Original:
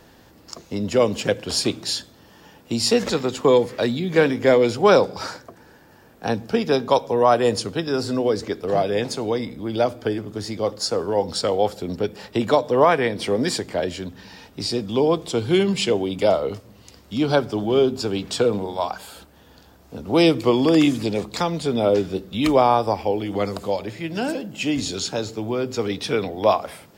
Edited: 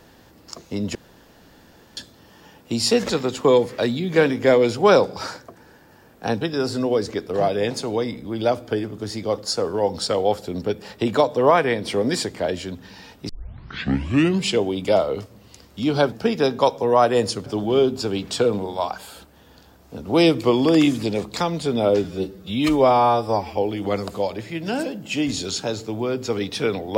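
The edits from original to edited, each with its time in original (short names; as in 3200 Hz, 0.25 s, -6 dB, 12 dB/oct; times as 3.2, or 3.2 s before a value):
0.95–1.97 room tone
6.41–7.75 move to 17.46
14.63 tape start 1.11 s
22.04–23.06 stretch 1.5×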